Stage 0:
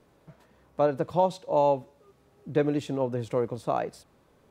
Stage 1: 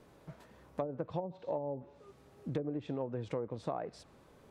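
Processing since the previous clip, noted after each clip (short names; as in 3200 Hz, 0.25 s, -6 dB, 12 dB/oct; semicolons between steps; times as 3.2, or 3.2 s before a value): treble ducked by the level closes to 410 Hz, closed at -18.5 dBFS; compressor 5:1, threshold -36 dBFS, peak gain reduction 15 dB; gain +1.5 dB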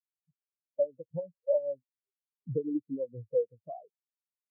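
spectral expander 4:1; gain +2.5 dB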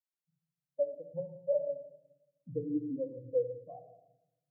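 shoebox room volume 3200 m³, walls furnished, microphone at 2.1 m; gain -5.5 dB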